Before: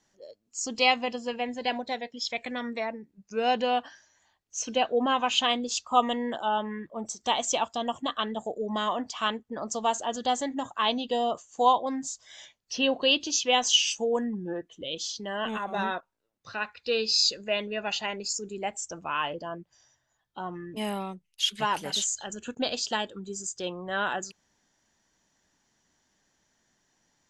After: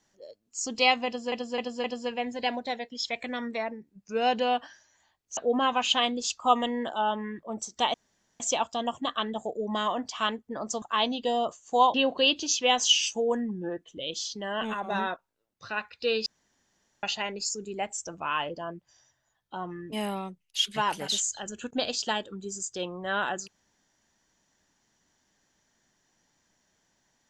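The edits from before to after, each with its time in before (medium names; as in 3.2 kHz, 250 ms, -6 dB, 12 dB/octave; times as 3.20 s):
1.06–1.32 s: loop, 4 plays
4.59–4.84 s: delete
7.41 s: insert room tone 0.46 s
9.83–10.68 s: delete
11.80–12.78 s: delete
17.10–17.87 s: room tone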